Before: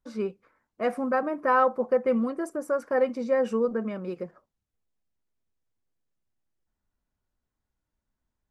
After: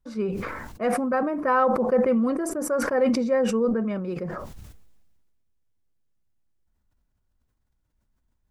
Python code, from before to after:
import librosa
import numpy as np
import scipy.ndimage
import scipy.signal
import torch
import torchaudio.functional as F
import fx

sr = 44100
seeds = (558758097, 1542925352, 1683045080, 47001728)

y = fx.low_shelf(x, sr, hz=160.0, db=9.5)
y = fx.sustainer(y, sr, db_per_s=33.0)